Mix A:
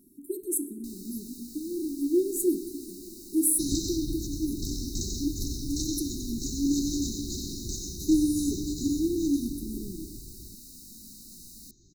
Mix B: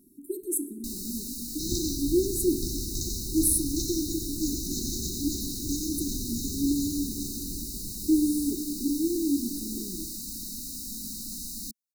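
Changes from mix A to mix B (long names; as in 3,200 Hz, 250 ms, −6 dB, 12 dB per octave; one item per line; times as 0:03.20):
first sound +10.5 dB
second sound: entry −2.00 s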